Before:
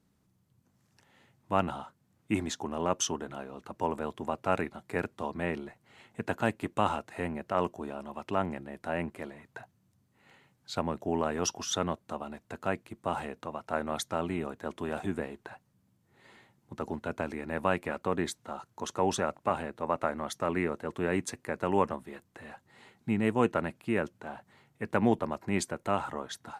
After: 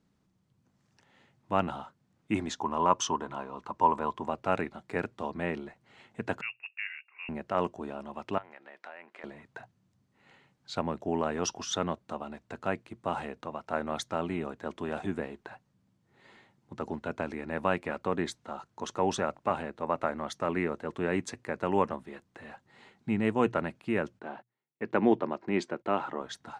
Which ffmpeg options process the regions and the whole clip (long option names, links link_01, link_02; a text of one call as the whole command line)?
ffmpeg -i in.wav -filter_complex "[0:a]asettb=1/sr,asplit=3[link_01][link_02][link_03];[link_01]atrim=end=2.604[link_04];[link_02]atrim=start=2.6:end=4.28,asetpts=PTS-STARTPTS,afade=type=in:duration=0.004:curve=qsin,afade=type=out:start_time=1.676:duration=0.004:curve=qsin,lowpass=11000,equalizer=frequency=1000:width_type=o:width=0.34:gain=14[link_05];[link_03]atrim=start=4.276[link_06];[link_04][link_05]acrossfade=duration=0.004:curve1=hsin:curve2=qsin[link_07];[link_07][link_06]acrossfade=duration=0.004:curve1=qsin:curve2=hsin,asettb=1/sr,asplit=3[link_08][link_09][link_10];[link_08]atrim=end=6.414[link_11];[link_09]atrim=start=6.41:end=7.29,asetpts=PTS-STARTPTS,afade=type=in:duration=0.004:curve=qsin,afade=type=out:start_time=0.876:duration=0.004:curve=qsin,lowpass=frequency=2500:width_type=q:width=0.5098,lowpass=frequency=2500:width_type=q:width=0.6013,lowpass=frequency=2500:width_type=q:width=0.9,lowpass=frequency=2500:width_type=q:width=2.563,afreqshift=-2900,aderivative[link_12];[link_10]atrim=start=7.286[link_13];[link_11][link_12]acrossfade=duration=0.004:curve1=hsin:curve2=qsin[link_14];[link_14][link_13]acrossfade=duration=0.004:curve1=qsin:curve2=hsin,asettb=1/sr,asplit=3[link_15][link_16][link_17];[link_15]atrim=end=8.384[link_18];[link_16]atrim=start=8.38:end=9.24,asetpts=PTS-STARTPTS,afade=type=in:duration=0.004:curve=qsin,afade=type=out:start_time=0.856:duration=0.004:curve=qsin,equalizer=frequency=1900:width=1.4:gain=3.5,acompressor=threshold=-39dB:ratio=6:attack=3.2:release=140:knee=1:detection=peak,highpass=630,lowpass=5300[link_19];[link_17]atrim=start=9.236[link_20];[link_18][link_19]acrossfade=duration=0.004:curve1=hsin:curve2=qsin[link_21];[link_21][link_20]acrossfade=duration=0.004:curve1=qsin:curve2=hsin,asettb=1/sr,asplit=3[link_22][link_23][link_24];[link_22]atrim=end=24.194[link_25];[link_23]atrim=start=24.19:end=26.21,asetpts=PTS-STARTPTS,afade=type=in:duration=0.004:curve=qsin,afade=type=out:start_time=2.016:duration=0.004:curve=qsin,agate=range=-29dB:threshold=-53dB:ratio=16:release=100:detection=peak,highpass=170,lowpass=4500,equalizer=frequency=350:width_type=o:width=0.56:gain=5.5[link_26];[link_24]atrim=start=26.206[link_27];[link_25][link_26]acrossfade=duration=0.004:curve1=hsin:curve2=qsin[link_28];[link_28][link_27]acrossfade=duration=0.004:curve1=qsin:curve2=hsin,lowpass=6600,equalizer=frequency=86:width=5.5:gain=-4,bandreject=frequency=60:width_type=h:width=6,bandreject=frequency=120:width_type=h:width=6" out.wav